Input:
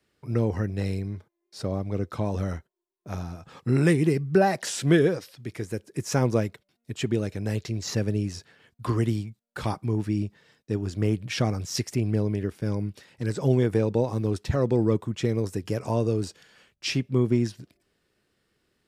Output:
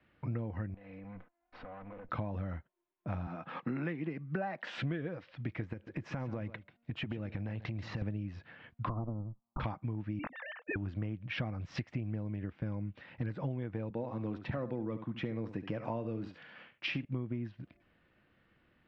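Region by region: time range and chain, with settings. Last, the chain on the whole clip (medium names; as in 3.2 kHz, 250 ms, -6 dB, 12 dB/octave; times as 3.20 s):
0.74–2.09 s: comb filter that takes the minimum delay 4 ms + tone controls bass -6 dB, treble -11 dB + compression, threshold -48 dBFS
3.27–4.77 s: high-pass 170 Hz 24 dB/octave + peaking EQ 1.3 kHz +2.5 dB 2 oct
5.73–8.02 s: compression, threshold -35 dBFS + delay 138 ms -15.5 dB
8.89–9.60 s: comb filter that takes the minimum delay 1 ms + steep low-pass 1.3 kHz 96 dB/octave
10.19–10.76 s: formants replaced by sine waves + spectrum-flattening compressor 2:1
13.90–17.05 s: high-pass 150 Hz + delay 71 ms -12.5 dB
whole clip: low-pass 2.8 kHz 24 dB/octave; peaking EQ 410 Hz -14 dB 0.24 oct; compression 12:1, threshold -38 dBFS; trim +4.5 dB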